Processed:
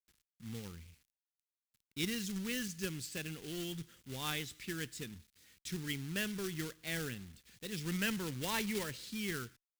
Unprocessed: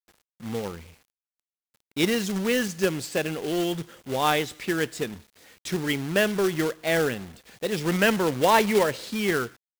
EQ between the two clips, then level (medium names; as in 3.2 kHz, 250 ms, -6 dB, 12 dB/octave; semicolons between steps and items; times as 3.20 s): amplifier tone stack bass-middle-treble 6-0-2; +6.0 dB